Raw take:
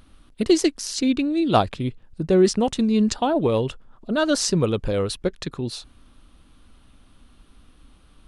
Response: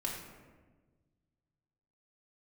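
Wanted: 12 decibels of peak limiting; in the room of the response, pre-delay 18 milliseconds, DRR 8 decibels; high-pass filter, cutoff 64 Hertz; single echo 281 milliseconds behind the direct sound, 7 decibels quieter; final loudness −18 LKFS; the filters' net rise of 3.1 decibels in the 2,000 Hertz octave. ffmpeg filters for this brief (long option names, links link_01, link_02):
-filter_complex "[0:a]highpass=64,equalizer=frequency=2000:width_type=o:gain=4.5,alimiter=limit=-13.5dB:level=0:latency=1,aecho=1:1:281:0.447,asplit=2[link_01][link_02];[1:a]atrim=start_sample=2205,adelay=18[link_03];[link_02][link_03]afir=irnorm=-1:irlink=0,volume=-10.5dB[link_04];[link_01][link_04]amix=inputs=2:normalize=0,volume=4.5dB"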